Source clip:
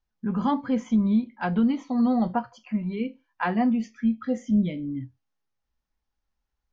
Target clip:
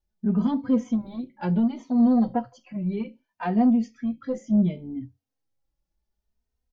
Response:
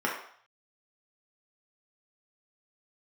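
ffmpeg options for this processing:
-filter_complex "[0:a]firequalizer=gain_entry='entry(540,0);entry(1100,-10);entry(4700,-4)':delay=0.05:min_phase=1,asoftclip=type=tanh:threshold=0.141,asplit=2[s0][s1];[s1]adelay=3,afreqshift=0.67[s2];[s0][s2]amix=inputs=2:normalize=1,volume=1.88"

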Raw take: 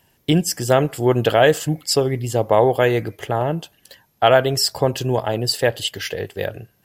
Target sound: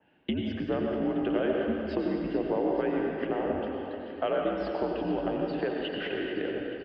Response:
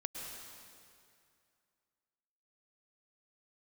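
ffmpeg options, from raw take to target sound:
-filter_complex "[0:a]highpass=f=280:t=q:w=0.5412,highpass=f=280:t=q:w=1.307,lowpass=f=3200:t=q:w=0.5176,lowpass=f=3200:t=q:w=0.7071,lowpass=f=3200:t=q:w=1.932,afreqshift=-78,lowshelf=f=270:g=11,acompressor=threshold=0.0447:ratio=3,aecho=1:1:435|870|1305|1740|2175|2610|3045:0.266|0.16|0.0958|0.0575|0.0345|0.0207|0.0124[s0];[1:a]atrim=start_sample=2205,asetrate=52920,aresample=44100[s1];[s0][s1]afir=irnorm=-1:irlink=0,adynamicequalizer=threshold=0.00447:dfrequency=2300:dqfactor=0.7:tfrequency=2300:tqfactor=0.7:attack=5:release=100:ratio=0.375:range=2:mode=cutabove:tftype=highshelf"

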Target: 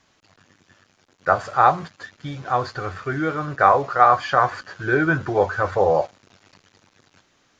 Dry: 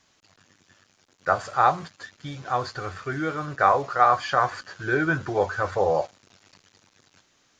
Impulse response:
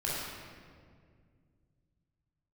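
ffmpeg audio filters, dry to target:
-af "highshelf=f=4100:g=-8.5,volume=1.68"

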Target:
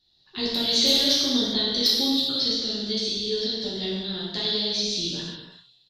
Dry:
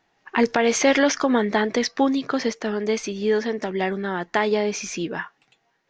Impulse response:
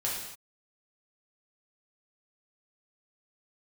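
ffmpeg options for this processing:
-filter_complex "[0:a]firequalizer=gain_entry='entry(100,0);entry(170,-6);entry(260,-12);entry(850,-23);entry(2300,-20);entry(3900,15);entry(6400,-13);entry(9200,-3)':delay=0.05:min_phase=1,asplit=2[s0][s1];[s1]aeval=exprs='(mod(5.62*val(0)+1,2)-1)/5.62':c=same,volume=0.316[s2];[s0][s2]amix=inputs=2:normalize=0[s3];[1:a]atrim=start_sample=2205,afade=t=out:st=0.32:d=0.01,atrim=end_sample=14553,asetrate=28665,aresample=44100[s4];[s3][s4]afir=irnorm=-1:irlink=0,volume=0.562"

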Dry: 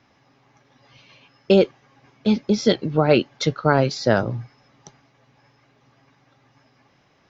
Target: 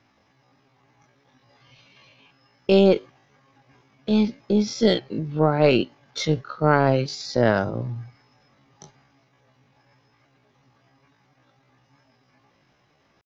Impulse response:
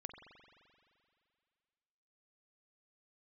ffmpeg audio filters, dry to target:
-af "atempo=0.55,aeval=exprs='0.841*(cos(1*acos(clip(val(0)/0.841,-1,1)))-cos(1*PI/2))+0.119*(cos(2*acos(clip(val(0)/0.841,-1,1)))-cos(2*PI/2))':c=same,volume=0.75"

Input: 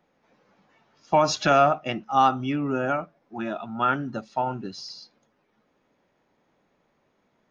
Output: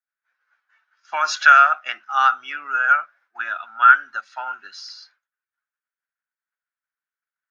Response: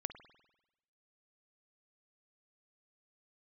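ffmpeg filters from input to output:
-af "highpass=f=1500:t=q:w=7.1,agate=range=0.0224:threshold=0.00355:ratio=3:detection=peak,volume=1.12"

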